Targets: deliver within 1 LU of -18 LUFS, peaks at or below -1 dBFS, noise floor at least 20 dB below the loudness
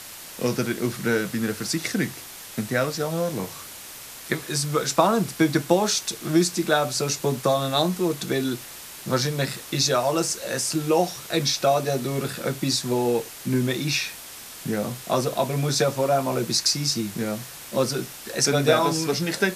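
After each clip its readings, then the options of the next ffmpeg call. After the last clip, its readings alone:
noise floor -41 dBFS; noise floor target -44 dBFS; loudness -24.0 LUFS; peak -4.5 dBFS; loudness target -18.0 LUFS
-> -af "afftdn=nr=6:nf=-41"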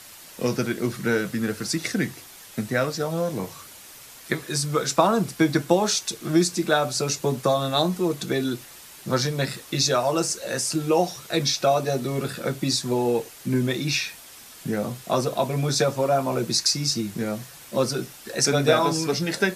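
noise floor -45 dBFS; loudness -24.0 LUFS; peak -4.5 dBFS; loudness target -18.0 LUFS
-> -af "volume=6dB,alimiter=limit=-1dB:level=0:latency=1"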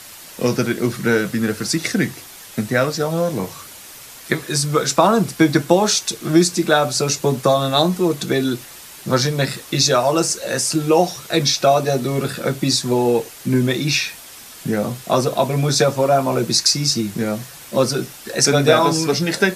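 loudness -18.0 LUFS; peak -1.0 dBFS; noise floor -39 dBFS

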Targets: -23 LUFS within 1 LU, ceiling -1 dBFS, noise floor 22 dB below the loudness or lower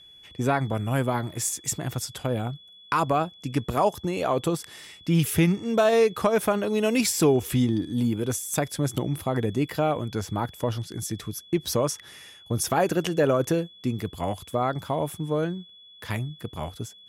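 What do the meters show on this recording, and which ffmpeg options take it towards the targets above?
steady tone 3400 Hz; tone level -48 dBFS; loudness -26.0 LUFS; peak -9.5 dBFS; loudness target -23.0 LUFS
-> -af "bandreject=f=3.4k:w=30"
-af "volume=3dB"

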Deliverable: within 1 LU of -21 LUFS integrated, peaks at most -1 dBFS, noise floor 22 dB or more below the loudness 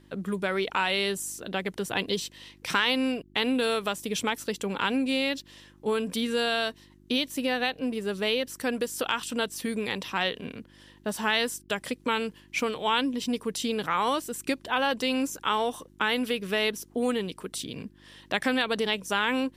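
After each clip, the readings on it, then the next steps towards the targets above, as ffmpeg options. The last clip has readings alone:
hum 50 Hz; harmonics up to 350 Hz; hum level -57 dBFS; loudness -28.5 LUFS; peak -11.0 dBFS; loudness target -21.0 LUFS
-> -af "bandreject=f=50:t=h:w=4,bandreject=f=100:t=h:w=4,bandreject=f=150:t=h:w=4,bandreject=f=200:t=h:w=4,bandreject=f=250:t=h:w=4,bandreject=f=300:t=h:w=4,bandreject=f=350:t=h:w=4"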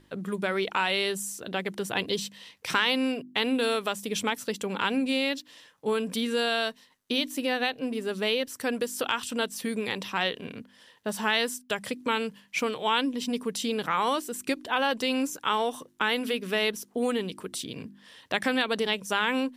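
hum none; loudness -28.5 LUFS; peak -11.0 dBFS; loudness target -21.0 LUFS
-> -af "volume=7.5dB"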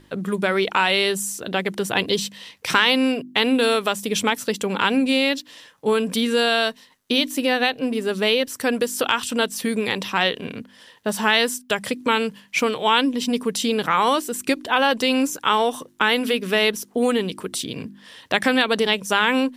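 loudness -21.0 LUFS; peak -3.5 dBFS; noise floor -53 dBFS

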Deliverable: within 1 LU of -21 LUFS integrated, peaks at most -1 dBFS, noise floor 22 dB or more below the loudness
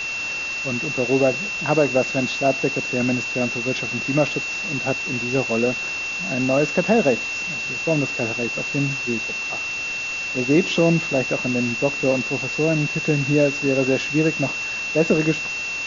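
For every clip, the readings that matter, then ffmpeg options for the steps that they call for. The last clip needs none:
steady tone 2700 Hz; tone level -25 dBFS; noise floor -28 dBFS; noise floor target -43 dBFS; loudness -21.0 LUFS; peak -5.0 dBFS; loudness target -21.0 LUFS
-> -af "bandreject=f=2.7k:w=30"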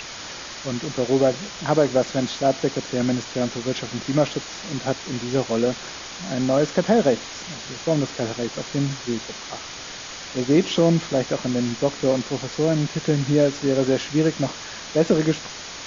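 steady tone none; noise floor -36 dBFS; noise floor target -45 dBFS
-> -af "afftdn=nr=9:nf=-36"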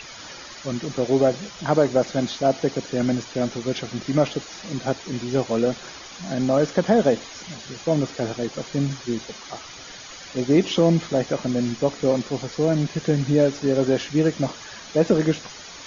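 noise floor -40 dBFS; noise floor target -45 dBFS
-> -af "afftdn=nr=6:nf=-40"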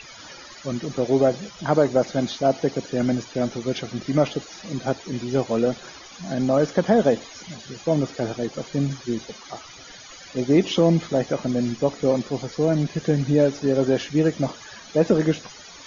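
noise floor -43 dBFS; noise floor target -45 dBFS
-> -af "afftdn=nr=6:nf=-43"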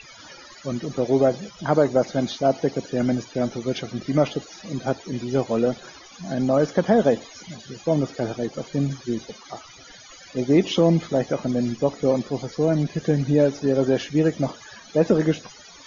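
noise floor -46 dBFS; loudness -23.0 LUFS; peak -6.0 dBFS; loudness target -21.0 LUFS
-> -af "volume=2dB"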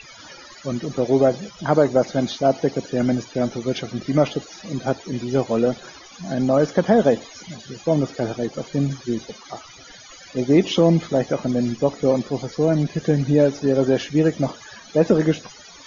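loudness -21.0 LUFS; peak -4.0 dBFS; noise floor -44 dBFS

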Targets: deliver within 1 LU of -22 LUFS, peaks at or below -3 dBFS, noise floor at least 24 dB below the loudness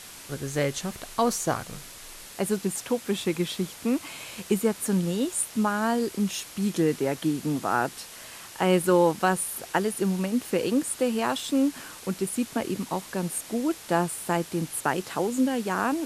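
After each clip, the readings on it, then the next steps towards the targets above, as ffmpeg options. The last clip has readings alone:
noise floor -44 dBFS; noise floor target -51 dBFS; loudness -27.0 LUFS; peak -9.0 dBFS; loudness target -22.0 LUFS
-> -af "afftdn=nr=7:nf=-44"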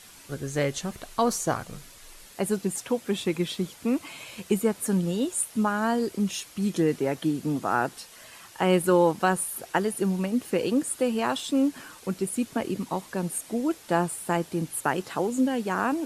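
noise floor -49 dBFS; noise floor target -51 dBFS
-> -af "afftdn=nr=6:nf=-49"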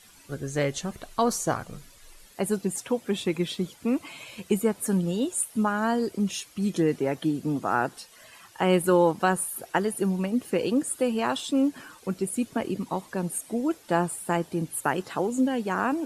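noise floor -53 dBFS; loudness -27.0 LUFS; peak -9.0 dBFS; loudness target -22.0 LUFS
-> -af "volume=5dB"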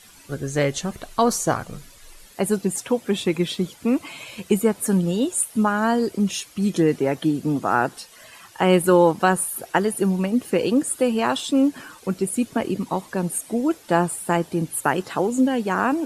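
loudness -22.0 LUFS; peak -4.0 dBFS; noise floor -48 dBFS

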